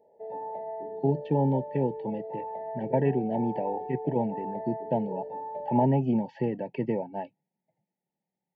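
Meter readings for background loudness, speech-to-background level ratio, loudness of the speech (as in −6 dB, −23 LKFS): −37.5 LKFS, 8.0 dB, −29.5 LKFS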